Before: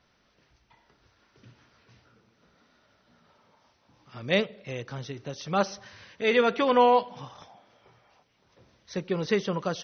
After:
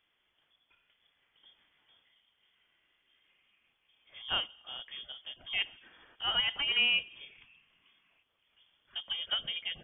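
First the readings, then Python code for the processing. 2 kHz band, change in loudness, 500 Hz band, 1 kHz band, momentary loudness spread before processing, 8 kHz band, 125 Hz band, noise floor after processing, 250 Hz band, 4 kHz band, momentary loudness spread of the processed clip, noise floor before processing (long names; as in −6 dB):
−1.5 dB, −5.5 dB, −27.5 dB, −18.0 dB, 20 LU, can't be measured, −22.5 dB, −77 dBFS, −26.5 dB, +7.5 dB, 17 LU, −68 dBFS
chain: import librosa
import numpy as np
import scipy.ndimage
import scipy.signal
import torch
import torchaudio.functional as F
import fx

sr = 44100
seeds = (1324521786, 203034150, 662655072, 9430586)

y = fx.freq_invert(x, sr, carrier_hz=3400)
y = fx.end_taper(y, sr, db_per_s=550.0)
y = F.gain(torch.from_numpy(y), -8.5).numpy()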